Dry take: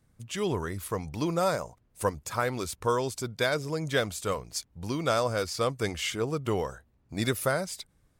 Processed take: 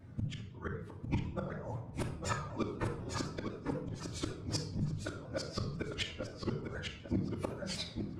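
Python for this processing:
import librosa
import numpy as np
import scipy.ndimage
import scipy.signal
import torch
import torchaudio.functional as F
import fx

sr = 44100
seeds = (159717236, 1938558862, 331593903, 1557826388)

y = fx.phase_scramble(x, sr, seeds[0], window_ms=50)
y = scipy.signal.sosfilt(scipy.signal.butter(2, 100.0, 'highpass', fs=sr, output='sos'), y)
y = fx.low_shelf(y, sr, hz=130.0, db=7.0)
y = fx.rider(y, sr, range_db=4, speed_s=0.5)
y = fx.gate_flip(y, sr, shuts_db=-20.0, range_db=-31)
y = fx.spacing_loss(y, sr, db_at_10k=25)
y = fx.gate_flip(y, sr, shuts_db=-32.0, range_db=-32)
y = fx.echo_feedback(y, sr, ms=851, feedback_pct=28, wet_db=-6.0)
y = fx.room_shoebox(y, sr, seeds[1], volume_m3=2100.0, walls='furnished', distance_m=2.5)
y = fx.vibrato_shape(y, sr, shape='saw_down', rate_hz=4.0, depth_cents=100.0)
y = y * librosa.db_to_amplitude(9.0)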